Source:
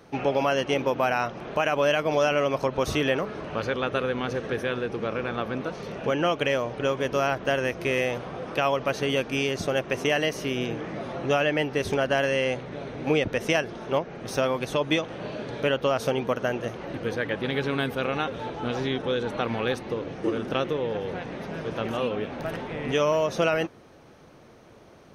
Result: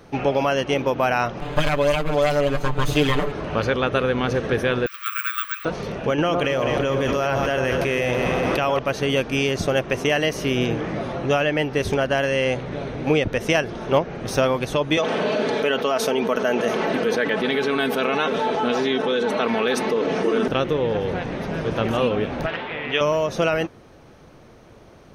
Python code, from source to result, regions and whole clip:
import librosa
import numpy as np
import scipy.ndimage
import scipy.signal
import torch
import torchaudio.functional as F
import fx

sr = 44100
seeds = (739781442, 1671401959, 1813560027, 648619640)

y = fx.chain(x, sr, fx.lower_of_two(delay_ms=7.0),
    fx.notch(hz=5600.0, q=7.2),
    fx.comb(ms=6.7, depth=0.94), at=(1.41, 3.32))
y = fx.chain(y, sr, fx.brickwall_highpass(low_hz=1100.0),
    fx.comb(ms=6.5, depth=0.37),
    fx.resample_bad(factor=2, down='filtered', up='zero_stuff'), at=(4.86, 5.65))
y = fx.chain(y, sr, fx.echo_alternate(ms=103, hz=1200.0, feedback_pct=75, wet_db=-7.0),
    fx.env_flatten(amount_pct=100), at=(6.18, 8.79))
y = fx.chain(y, sr, fx.highpass(hz=260.0, slope=12),
    fx.comb(ms=4.6, depth=0.53),
    fx.env_flatten(amount_pct=70), at=(14.97, 20.48))
y = fx.chain(y, sr, fx.lowpass(hz=3300.0, slope=24),
    fx.tilt_eq(slope=4.0), at=(22.46, 23.01))
y = fx.low_shelf(y, sr, hz=73.0, db=10.5)
y = fx.rider(y, sr, range_db=4, speed_s=0.5)
y = y * 10.0 ** (2.5 / 20.0)